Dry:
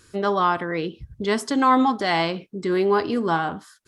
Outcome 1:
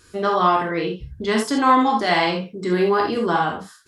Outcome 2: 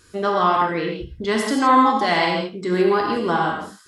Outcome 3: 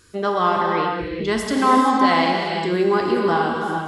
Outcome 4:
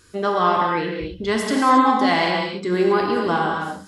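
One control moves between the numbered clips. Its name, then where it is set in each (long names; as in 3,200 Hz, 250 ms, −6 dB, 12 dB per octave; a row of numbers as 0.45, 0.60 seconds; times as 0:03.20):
reverb whose tail is shaped and stops, gate: 100, 190, 500, 300 milliseconds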